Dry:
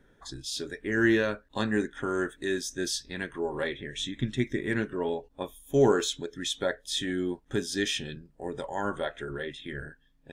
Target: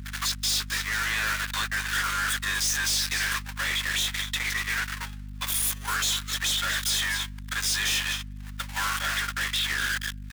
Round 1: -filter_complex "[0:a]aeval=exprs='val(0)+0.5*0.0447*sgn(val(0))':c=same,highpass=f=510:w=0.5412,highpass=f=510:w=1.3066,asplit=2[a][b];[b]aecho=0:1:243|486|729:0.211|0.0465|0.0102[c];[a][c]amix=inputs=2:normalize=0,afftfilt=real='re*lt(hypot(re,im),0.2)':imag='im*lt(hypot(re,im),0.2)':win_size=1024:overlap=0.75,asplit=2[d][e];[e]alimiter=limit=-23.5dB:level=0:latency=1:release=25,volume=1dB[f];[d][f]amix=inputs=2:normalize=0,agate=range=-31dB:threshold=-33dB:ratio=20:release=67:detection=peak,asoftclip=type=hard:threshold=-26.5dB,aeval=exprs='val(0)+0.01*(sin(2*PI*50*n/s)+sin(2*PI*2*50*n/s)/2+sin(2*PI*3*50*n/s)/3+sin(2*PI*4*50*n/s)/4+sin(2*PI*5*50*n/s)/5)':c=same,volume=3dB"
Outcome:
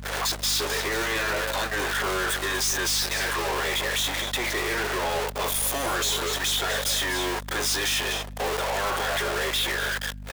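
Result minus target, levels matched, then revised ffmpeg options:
500 Hz band +19.0 dB
-filter_complex "[0:a]aeval=exprs='val(0)+0.5*0.0447*sgn(val(0))':c=same,highpass=f=1.3k:w=0.5412,highpass=f=1.3k:w=1.3066,asplit=2[a][b];[b]aecho=0:1:243|486|729:0.211|0.0465|0.0102[c];[a][c]amix=inputs=2:normalize=0,afftfilt=real='re*lt(hypot(re,im),0.2)':imag='im*lt(hypot(re,im),0.2)':win_size=1024:overlap=0.75,asplit=2[d][e];[e]alimiter=limit=-23.5dB:level=0:latency=1:release=25,volume=1dB[f];[d][f]amix=inputs=2:normalize=0,agate=range=-31dB:threshold=-33dB:ratio=20:release=67:detection=peak,asoftclip=type=hard:threshold=-26.5dB,aeval=exprs='val(0)+0.01*(sin(2*PI*50*n/s)+sin(2*PI*2*50*n/s)/2+sin(2*PI*3*50*n/s)/3+sin(2*PI*4*50*n/s)/4+sin(2*PI*5*50*n/s)/5)':c=same,volume=3dB"

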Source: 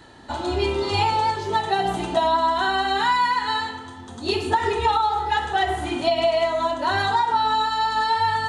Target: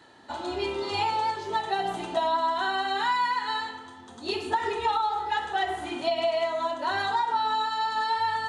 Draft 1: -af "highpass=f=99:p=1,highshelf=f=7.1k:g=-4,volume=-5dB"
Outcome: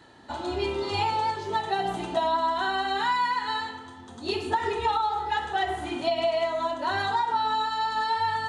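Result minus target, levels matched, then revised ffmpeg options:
125 Hz band +6.0 dB
-af "highpass=f=290:p=1,highshelf=f=7.1k:g=-4,volume=-5dB"

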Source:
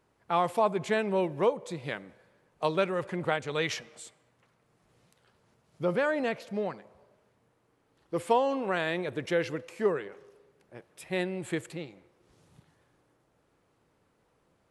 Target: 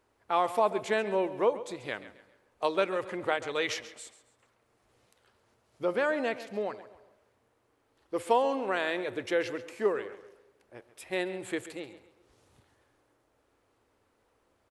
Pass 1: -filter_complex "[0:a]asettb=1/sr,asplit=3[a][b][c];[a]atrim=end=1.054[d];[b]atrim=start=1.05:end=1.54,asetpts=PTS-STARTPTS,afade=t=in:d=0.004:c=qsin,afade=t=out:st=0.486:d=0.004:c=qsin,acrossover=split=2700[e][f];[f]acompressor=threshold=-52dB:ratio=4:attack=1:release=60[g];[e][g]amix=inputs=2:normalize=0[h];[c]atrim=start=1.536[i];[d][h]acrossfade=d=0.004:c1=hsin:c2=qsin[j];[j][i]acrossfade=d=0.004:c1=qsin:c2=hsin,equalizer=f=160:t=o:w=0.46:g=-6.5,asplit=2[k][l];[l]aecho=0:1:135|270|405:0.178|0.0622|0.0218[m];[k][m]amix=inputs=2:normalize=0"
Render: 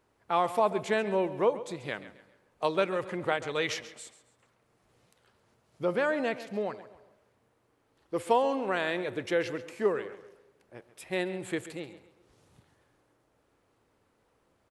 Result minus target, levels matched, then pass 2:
125 Hz band +6.0 dB
-filter_complex "[0:a]asettb=1/sr,asplit=3[a][b][c];[a]atrim=end=1.054[d];[b]atrim=start=1.05:end=1.54,asetpts=PTS-STARTPTS,afade=t=in:d=0.004:c=qsin,afade=t=out:st=0.486:d=0.004:c=qsin,acrossover=split=2700[e][f];[f]acompressor=threshold=-52dB:ratio=4:attack=1:release=60[g];[e][g]amix=inputs=2:normalize=0[h];[c]atrim=start=1.536[i];[d][h]acrossfade=d=0.004:c1=hsin:c2=qsin[j];[j][i]acrossfade=d=0.004:c1=qsin:c2=hsin,equalizer=f=160:t=o:w=0.46:g=-17.5,asplit=2[k][l];[l]aecho=0:1:135|270|405:0.178|0.0622|0.0218[m];[k][m]amix=inputs=2:normalize=0"

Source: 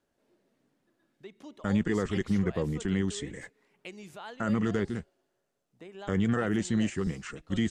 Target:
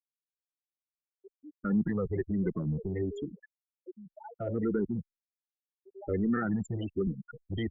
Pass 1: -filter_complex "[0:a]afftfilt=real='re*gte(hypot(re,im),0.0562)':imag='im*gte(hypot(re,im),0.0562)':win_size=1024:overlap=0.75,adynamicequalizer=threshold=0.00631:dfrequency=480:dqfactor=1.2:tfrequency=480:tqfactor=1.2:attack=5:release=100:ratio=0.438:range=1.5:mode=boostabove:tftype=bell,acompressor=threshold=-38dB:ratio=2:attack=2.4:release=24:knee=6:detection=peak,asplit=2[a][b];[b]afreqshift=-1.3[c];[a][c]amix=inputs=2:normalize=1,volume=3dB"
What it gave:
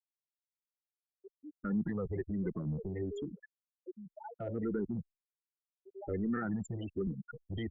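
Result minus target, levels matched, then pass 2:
compressor: peak gain reduction +5.5 dB
-filter_complex "[0:a]afftfilt=real='re*gte(hypot(re,im),0.0562)':imag='im*gte(hypot(re,im),0.0562)':win_size=1024:overlap=0.75,adynamicequalizer=threshold=0.00631:dfrequency=480:dqfactor=1.2:tfrequency=480:tqfactor=1.2:attack=5:release=100:ratio=0.438:range=1.5:mode=boostabove:tftype=bell,acompressor=threshold=-27dB:ratio=2:attack=2.4:release=24:knee=6:detection=peak,asplit=2[a][b];[b]afreqshift=-1.3[c];[a][c]amix=inputs=2:normalize=1,volume=3dB"

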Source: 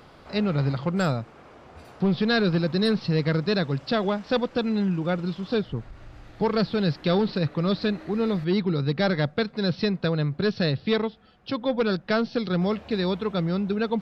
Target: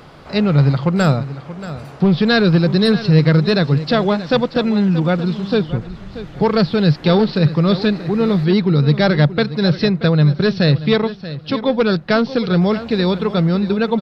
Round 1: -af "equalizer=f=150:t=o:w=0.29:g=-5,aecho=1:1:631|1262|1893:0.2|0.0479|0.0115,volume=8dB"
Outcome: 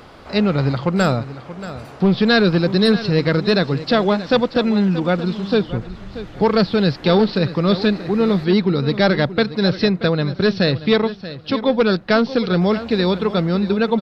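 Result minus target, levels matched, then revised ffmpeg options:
125 Hz band -4.0 dB
-af "equalizer=f=150:t=o:w=0.29:g=6,aecho=1:1:631|1262|1893:0.2|0.0479|0.0115,volume=8dB"

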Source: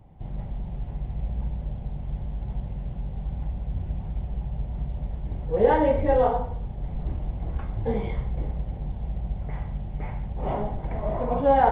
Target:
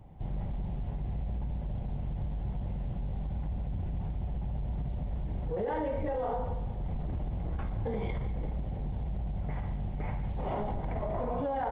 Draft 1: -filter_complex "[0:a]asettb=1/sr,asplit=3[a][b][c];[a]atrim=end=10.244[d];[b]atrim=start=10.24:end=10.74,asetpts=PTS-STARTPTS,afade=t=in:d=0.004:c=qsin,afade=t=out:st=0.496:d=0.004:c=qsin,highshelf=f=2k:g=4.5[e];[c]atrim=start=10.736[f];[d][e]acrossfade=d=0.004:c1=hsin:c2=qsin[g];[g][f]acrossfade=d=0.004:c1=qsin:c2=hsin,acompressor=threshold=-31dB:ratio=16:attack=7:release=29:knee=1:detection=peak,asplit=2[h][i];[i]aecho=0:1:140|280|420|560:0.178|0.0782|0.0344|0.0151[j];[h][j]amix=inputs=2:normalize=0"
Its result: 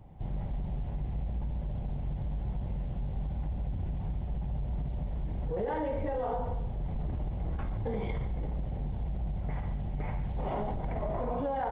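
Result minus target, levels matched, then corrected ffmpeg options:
echo 53 ms early
-filter_complex "[0:a]asettb=1/sr,asplit=3[a][b][c];[a]atrim=end=10.244[d];[b]atrim=start=10.24:end=10.74,asetpts=PTS-STARTPTS,afade=t=in:d=0.004:c=qsin,afade=t=out:st=0.496:d=0.004:c=qsin,highshelf=f=2k:g=4.5[e];[c]atrim=start=10.736[f];[d][e]acrossfade=d=0.004:c1=hsin:c2=qsin[g];[g][f]acrossfade=d=0.004:c1=qsin:c2=hsin,acompressor=threshold=-31dB:ratio=16:attack=7:release=29:knee=1:detection=peak,asplit=2[h][i];[i]aecho=0:1:193|386|579|772:0.178|0.0782|0.0344|0.0151[j];[h][j]amix=inputs=2:normalize=0"

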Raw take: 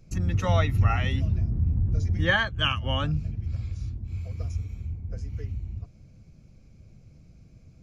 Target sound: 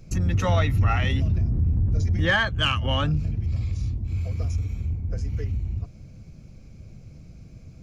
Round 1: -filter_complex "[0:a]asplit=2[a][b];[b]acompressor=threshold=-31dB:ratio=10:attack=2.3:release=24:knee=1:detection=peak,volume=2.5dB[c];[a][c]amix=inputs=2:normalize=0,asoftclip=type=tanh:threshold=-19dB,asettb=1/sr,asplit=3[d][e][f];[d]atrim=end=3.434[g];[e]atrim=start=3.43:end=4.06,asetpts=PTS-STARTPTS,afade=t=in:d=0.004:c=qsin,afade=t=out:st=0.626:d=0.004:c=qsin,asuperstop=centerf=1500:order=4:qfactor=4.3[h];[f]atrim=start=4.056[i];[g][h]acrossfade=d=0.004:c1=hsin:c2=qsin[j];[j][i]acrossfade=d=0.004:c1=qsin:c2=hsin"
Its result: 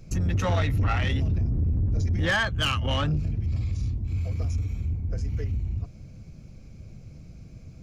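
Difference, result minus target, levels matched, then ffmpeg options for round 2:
soft clip: distortion +10 dB
-filter_complex "[0:a]asplit=2[a][b];[b]acompressor=threshold=-31dB:ratio=10:attack=2.3:release=24:knee=1:detection=peak,volume=2.5dB[c];[a][c]amix=inputs=2:normalize=0,asoftclip=type=tanh:threshold=-11dB,asettb=1/sr,asplit=3[d][e][f];[d]atrim=end=3.434[g];[e]atrim=start=3.43:end=4.06,asetpts=PTS-STARTPTS,afade=t=in:d=0.004:c=qsin,afade=t=out:st=0.626:d=0.004:c=qsin,asuperstop=centerf=1500:order=4:qfactor=4.3[h];[f]atrim=start=4.056[i];[g][h]acrossfade=d=0.004:c1=hsin:c2=qsin[j];[j][i]acrossfade=d=0.004:c1=qsin:c2=hsin"

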